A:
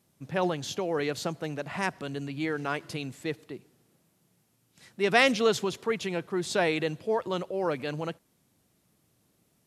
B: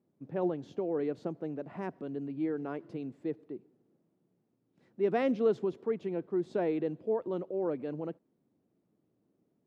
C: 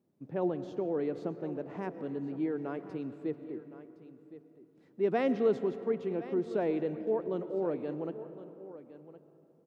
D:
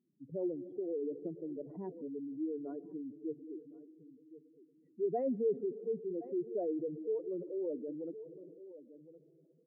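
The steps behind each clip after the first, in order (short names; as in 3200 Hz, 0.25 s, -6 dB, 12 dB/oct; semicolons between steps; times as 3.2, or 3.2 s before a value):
band-pass 320 Hz, Q 1.3
echo 1.064 s -15.5 dB; on a send at -12 dB: reverb RT60 3.3 s, pre-delay 75 ms
spectral contrast raised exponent 2.6; gain -4.5 dB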